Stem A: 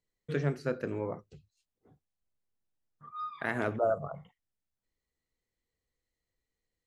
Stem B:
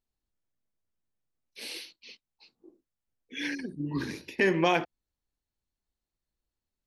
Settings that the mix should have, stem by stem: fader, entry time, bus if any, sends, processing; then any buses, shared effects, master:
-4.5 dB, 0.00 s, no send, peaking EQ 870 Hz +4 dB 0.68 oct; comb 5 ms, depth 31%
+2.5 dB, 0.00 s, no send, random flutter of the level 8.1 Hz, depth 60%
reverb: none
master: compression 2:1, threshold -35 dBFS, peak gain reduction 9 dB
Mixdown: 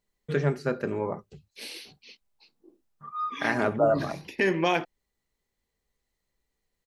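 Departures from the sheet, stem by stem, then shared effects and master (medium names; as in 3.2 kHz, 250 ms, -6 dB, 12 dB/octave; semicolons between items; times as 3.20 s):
stem A -4.5 dB -> +4.5 dB; master: missing compression 2:1, threshold -35 dBFS, peak gain reduction 9 dB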